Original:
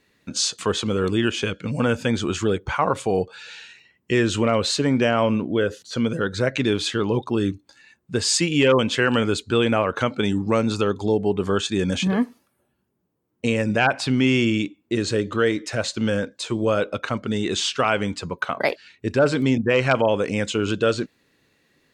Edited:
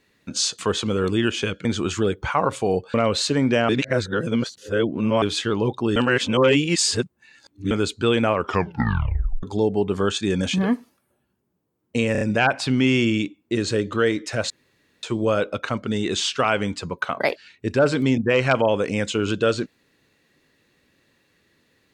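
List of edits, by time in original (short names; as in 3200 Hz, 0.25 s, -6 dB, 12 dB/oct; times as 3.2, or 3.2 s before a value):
1.65–2.09 cut
3.38–4.43 cut
5.18–6.71 reverse
7.45–9.2 reverse
9.84 tape stop 1.08 s
13.61 stutter 0.03 s, 4 plays
15.9–16.43 room tone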